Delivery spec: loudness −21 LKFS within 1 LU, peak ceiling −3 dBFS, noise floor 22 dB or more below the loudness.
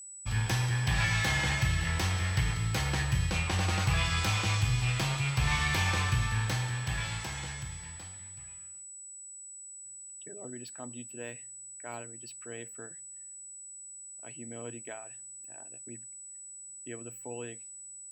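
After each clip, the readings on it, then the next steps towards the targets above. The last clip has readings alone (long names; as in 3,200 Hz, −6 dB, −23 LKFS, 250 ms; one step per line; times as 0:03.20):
interfering tone 7,900 Hz; level of the tone −44 dBFS; integrated loudness −31.5 LKFS; sample peak −16.5 dBFS; target loudness −21.0 LKFS
→ notch filter 7,900 Hz, Q 30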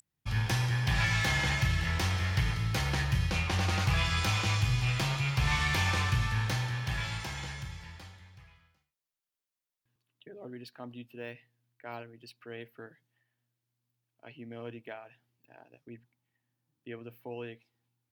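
interfering tone none found; integrated loudness −30.0 LKFS; sample peak −16.5 dBFS; target loudness −21.0 LKFS
→ level +9 dB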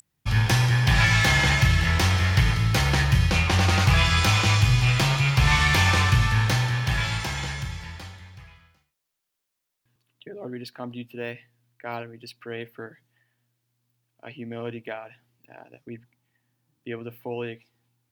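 integrated loudness −21.0 LKFS; sample peak −7.5 dBFS; background noise floor −81 dBFS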